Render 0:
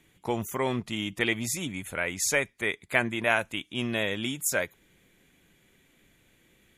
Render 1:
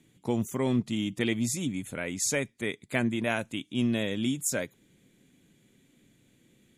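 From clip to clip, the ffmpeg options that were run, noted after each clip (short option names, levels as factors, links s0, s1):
-af "equalizer=f=125:t=o:w=1:g=10,equalizer=f=250:t=o:w=1:g=12,equalizer=f=500:t=o:w=1:g=4,equalizer=f=4000:t=o:w=1:g=5,equalizer=f=8000:t=o:w=1:g=8,volume=0.376"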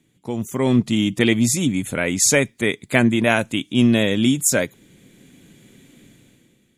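-af "dynaudnorm=f=110:g=11:m=5.01"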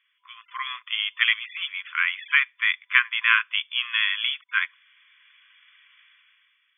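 -af "afftfilt=real='re*between(b*sr/4096,1000,3500)':imag='im*between(b*sr/4096,1000,3500)':win_size=4096:overlap=0.75,volume=1.41"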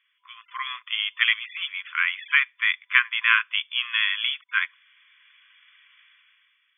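-af anull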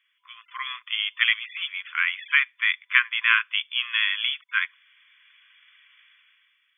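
-af "highpass=1000"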